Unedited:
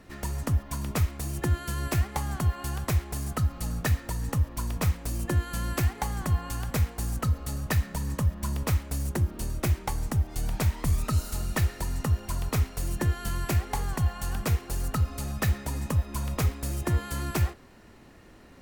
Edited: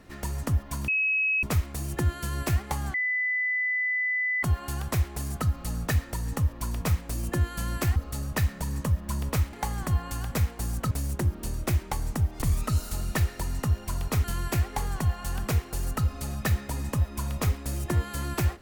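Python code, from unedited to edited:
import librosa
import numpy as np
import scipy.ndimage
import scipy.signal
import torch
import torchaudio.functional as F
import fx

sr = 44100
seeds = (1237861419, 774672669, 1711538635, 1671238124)

y = fx.edit(x, sr, fx.insert_tone(at_s=0.88, length_s=0.55, hz=2560.0, db=-22.0),
    fx.insert_tone(at_s=2.39, length_s=1.49, hz=2000.0, db=-24.0),
    fx.move(start_s=5.92, length_s=1.38, to_s=8.87),
    fx.cut(start_s=10.38, length_s=0.45),
    fx.cut(start_s=12.65, length_s=0.56), tone=tone)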